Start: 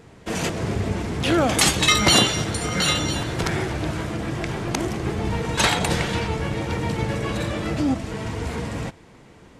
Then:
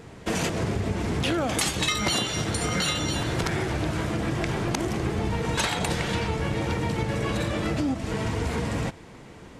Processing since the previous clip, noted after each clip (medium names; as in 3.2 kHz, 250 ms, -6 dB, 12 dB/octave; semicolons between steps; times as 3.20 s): compression 6:1, threshold -26 dBFS, peak gain reduction 13.5 dB; trim +3 dB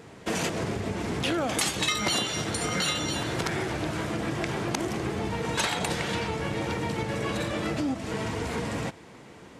high-pass 160 Hz 6 dB/octave; trim -1 dB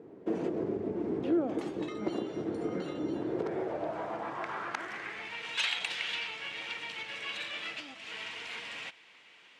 band-pass sweep 350 Hz -> 2.8 kHz, 3.23–5.46 s; trim +3 dB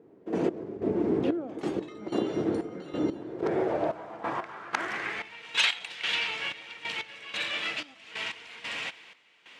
trance gate "..x..xxx" 92 bpm -12 dB; trim +7 dB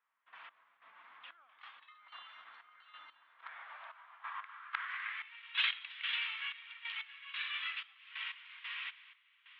elliptic band-pass 1.1–3.5 kHz, stop band 50 dB; trim -6.5 dB